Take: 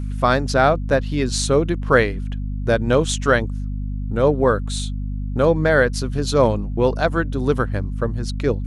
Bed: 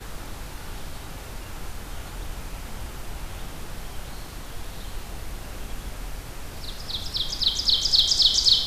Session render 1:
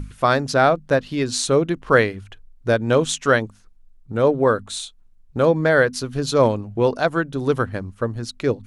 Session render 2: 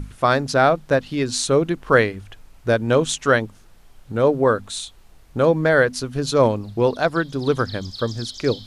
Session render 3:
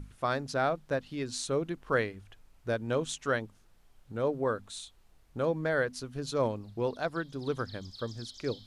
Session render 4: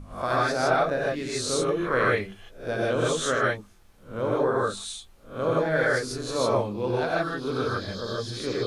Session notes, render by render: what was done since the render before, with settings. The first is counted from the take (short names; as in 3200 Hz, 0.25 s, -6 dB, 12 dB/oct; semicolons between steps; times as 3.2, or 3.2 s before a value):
notches 50/100/150/200/250 Hz
add bed -17.5 dB
gain -13 dB
spectral swells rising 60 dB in 0.36 s; non-linear reverb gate 0.18 s rising, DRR -5.5 dB